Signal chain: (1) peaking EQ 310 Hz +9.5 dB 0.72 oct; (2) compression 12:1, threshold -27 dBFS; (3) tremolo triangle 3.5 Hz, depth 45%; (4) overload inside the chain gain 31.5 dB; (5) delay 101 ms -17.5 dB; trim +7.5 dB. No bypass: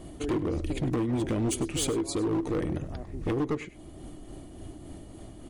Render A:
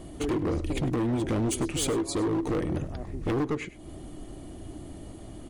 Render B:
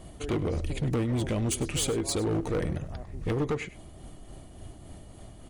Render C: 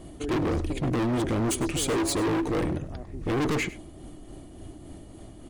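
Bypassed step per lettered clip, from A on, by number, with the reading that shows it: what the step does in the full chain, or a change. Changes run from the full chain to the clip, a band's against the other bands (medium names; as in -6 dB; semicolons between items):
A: 3, momentary loudness spread change -1 LU; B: 1, 250 Hz band -4.5 dB; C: 2, mean gain reduction 7.0 dB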